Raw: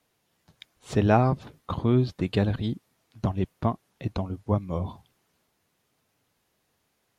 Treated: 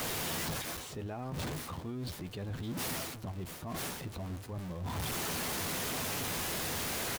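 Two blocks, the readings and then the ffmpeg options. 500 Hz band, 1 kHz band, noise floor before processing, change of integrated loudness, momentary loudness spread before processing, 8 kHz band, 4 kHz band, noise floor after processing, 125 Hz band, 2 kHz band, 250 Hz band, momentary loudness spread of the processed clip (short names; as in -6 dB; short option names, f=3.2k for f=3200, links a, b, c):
-11.5 dB, -8.5 dB, -74 dBFS, -9.5 dB, 12 LU, n/a, +6.0 dB, -46 dBFS, -12.0 dB, +1.0 dB, -12.0 dB, 7 LU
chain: -filter_complex "[0:a]aeval=exprs='val(0)+0.5*0.0335*sgn(val(0))':c=same,areverse,acompressor=threshold=-34dB:ratio=10,areverse,asplit=2[a][b];[b]adelay=12,volume=-11dB[c];[a][c]amix=inputs=2:normalize=0,alimiter=level_in=8dB:limit=-24dB:level=0:latency=1:release=82,volume=-8dB"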